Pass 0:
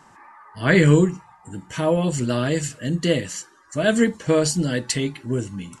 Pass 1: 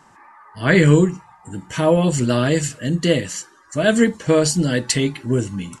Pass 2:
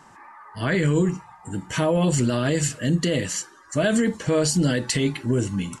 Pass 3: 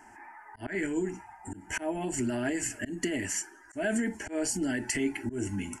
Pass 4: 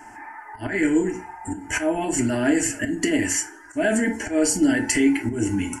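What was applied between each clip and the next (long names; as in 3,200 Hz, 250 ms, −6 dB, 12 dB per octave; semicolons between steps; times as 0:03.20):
automatic gain control gain up to 5.5 dB
brickwall limiter −13.5 dBFS, peak gain reduction 11.5 dB; level +1 dB
volume swells 199 ms; downward compressor, threshold −22 dBFS, peak gain reduction 6 dB; phaser with its sweep stopped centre 770 Hz, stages 8
feedback delay network reverb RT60 0.5 s, low-frequency decay 0.75×, high-frequency decay 0.5×, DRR 4 dB; level +8 dB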